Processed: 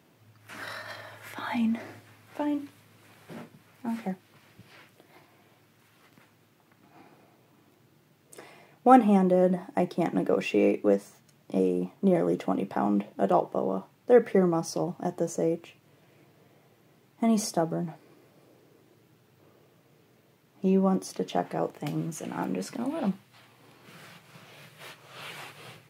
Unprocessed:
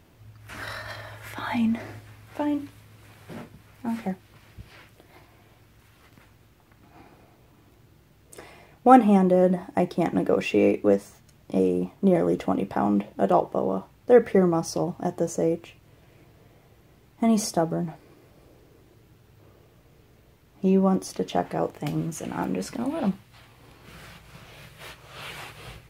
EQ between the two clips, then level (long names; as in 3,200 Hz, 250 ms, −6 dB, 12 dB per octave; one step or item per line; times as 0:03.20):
high-pass filter 130 Hz 24 dB per octave
−3.0 dB